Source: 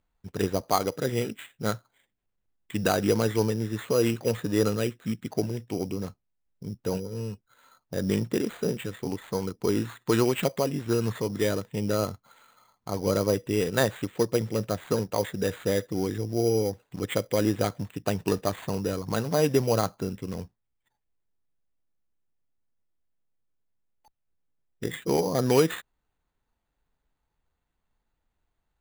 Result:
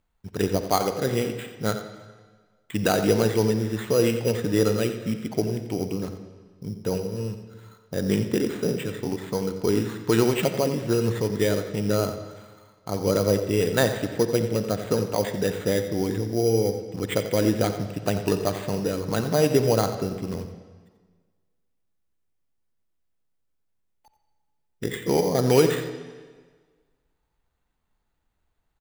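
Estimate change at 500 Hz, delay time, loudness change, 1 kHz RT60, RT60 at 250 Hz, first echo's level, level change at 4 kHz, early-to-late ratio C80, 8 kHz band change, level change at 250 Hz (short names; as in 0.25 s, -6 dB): +3.5 dB, 88 ms, +3.0 dB, 1.5 s, 1.5 s, -12.0 dB, +3.0 dB, 8.5 dB, +3.0 dB, +3.0 dB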